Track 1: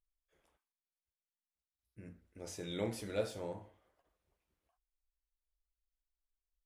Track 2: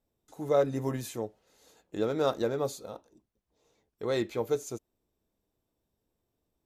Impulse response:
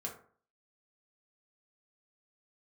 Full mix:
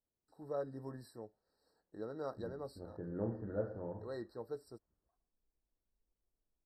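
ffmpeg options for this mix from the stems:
-filter_complex "[0:a]lowpass=f=1700:w=0.5412,lowpass=f=1700:w=1.3066,lowshelf=f=420:g=8,adelay=400,volume=0.531,asplit=2[s0][s1];[s1]volume=0.211[s2];[1:a]lowpass=9900,volume=0.188[s3];[s2]aecho=0:1:112:1[s4];[s0][s3][s4]amix=inputs=3:normalize=0,afftfilt=real='re*eq(mod(floor(b*sr/1024/1900),2),0)':imag='im*eq(mod(floor(b*sr/1024/1900),2),0)':win_size=1024:overlap=0.75"

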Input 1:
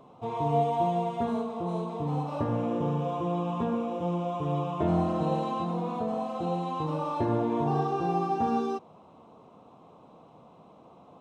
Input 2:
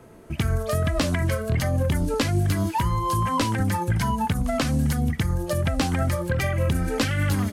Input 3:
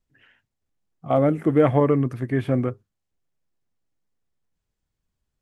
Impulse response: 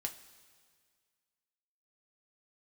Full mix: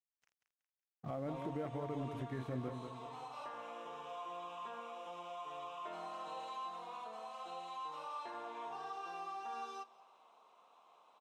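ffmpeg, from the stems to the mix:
-filter_complex "[0:a]highpass=1200,adelay=1050,volume=0.531,asplit=2[s0][s1];[s1]volume=0.501[s2];[2:a]acompressor=threshold=0.0251:ratio=2,flanger=delay=4.6:depth=4.6:regen=-76:speed=0.61:shape=sinusoidal,aeval=exprs='sgn(val(0))*max(abs(val(0))-0.00211,0)':c=same,volume=0.841,asplit=2[s3][s4];[s4]volume=0.376[s5];[s0]asoftclip=type=tanh:threshold=0.0211,acompressor=threshold=0.00398:ratio=6,volume=1[s6];[3:a]atrim=start_sample=2205[s7];[s2][s7]afir=irnorm=-1:irlink=0[s8];[s5]aecho=0:1:186|372|558|744|930:1|0.38|0.144|0.0549|0.0209[s9];[s3][s6][s8][s9]amix=inputs=4:normalize=0,alimiter=level_in=2.11:limit=0.0631:level=0:latency=1:release=403,volume=0.473"

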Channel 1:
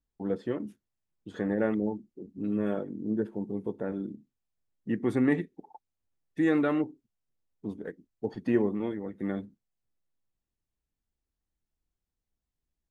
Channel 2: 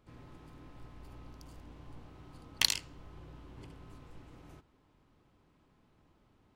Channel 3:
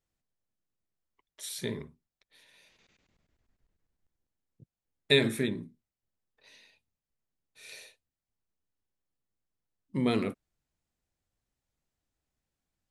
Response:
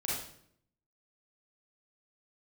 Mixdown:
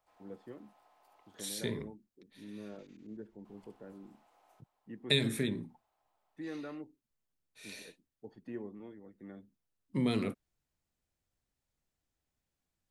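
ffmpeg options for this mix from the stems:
-filter_complex "[0:a]volume=0.141[s0];[1:a]highpass=f=730:t=q:w=4.3,highshelf=f=8100:g=11.5,volume=0.237,asplit=3[s1][s2][s3];[s1]atrim=end=1.48,asetpts=PTS-STARTPTS,afade=t=out:st=1.476:d=0.004:c=hsin[s4];[s2]atrim=start=1.48:end=3.45,asetpts=PTS-STARTPTS,volume=0[s5];[s3]atrim=start=3.45,asetpts=PTS-STARTPTS,afade=t=in:d=0.004:c=hsin[s6];[s4][s5][s6]concat=n=3:v=0:a=1[s7];[2:a]volume=0.891,asplit=2[s8][s9];[s9]apad=whole_len=569002[s10];[s0][s10]sidechaincompress=threshold=0.01:ratio=8:attack=16:release=150[s11];[s11][s7][s8]amix=inputs=3:normalize=0,acrossover=split=250|3000[s12][s13][s14];[s13]acompressor=threshold=0.0224:ratio=6[s15];[s12][s15][s14]amix=inputs=3:normalize=0"

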